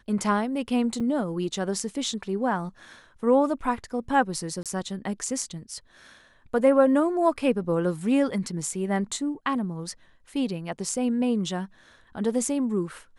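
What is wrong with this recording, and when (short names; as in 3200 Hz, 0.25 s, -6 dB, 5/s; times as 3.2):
1–1.01 gap 5.1 ms
4.63–4.66 gap 27 ms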